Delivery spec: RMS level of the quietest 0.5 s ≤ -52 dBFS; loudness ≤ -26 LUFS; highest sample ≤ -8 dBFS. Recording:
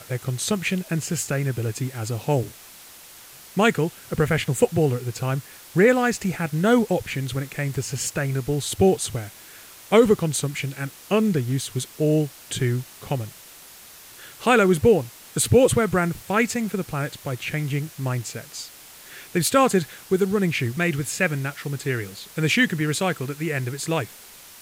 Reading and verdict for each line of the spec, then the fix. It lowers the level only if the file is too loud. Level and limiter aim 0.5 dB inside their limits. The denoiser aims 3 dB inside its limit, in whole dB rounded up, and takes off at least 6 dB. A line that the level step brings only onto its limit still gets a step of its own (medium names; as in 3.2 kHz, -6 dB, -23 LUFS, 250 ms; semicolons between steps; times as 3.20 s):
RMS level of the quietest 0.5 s -45 dBFS: fail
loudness -23.0 LUFS: fail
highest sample -5.0 dBFS: fail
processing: noise reduction 7 dB, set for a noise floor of -45 dBFS; trim -3.5 dB